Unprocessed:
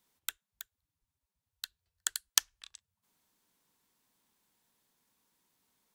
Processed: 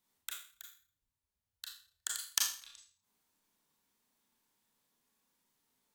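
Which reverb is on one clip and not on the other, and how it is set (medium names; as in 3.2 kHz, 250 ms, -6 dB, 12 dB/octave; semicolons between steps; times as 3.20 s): Schroeder reverb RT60 0.43 s, combs from 27 ms, DRR -1.5 dB; trim -6.5 dB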